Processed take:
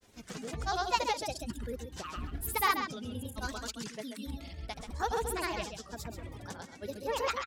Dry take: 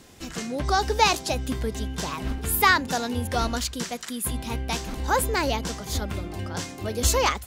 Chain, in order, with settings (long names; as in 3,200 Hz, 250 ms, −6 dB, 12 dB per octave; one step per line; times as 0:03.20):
reverb reduction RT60 1.3 s
granular cloud, pitch spread up and down by 3 semitones
single-tap delay 134 ms −8 dB
level −8.5 dB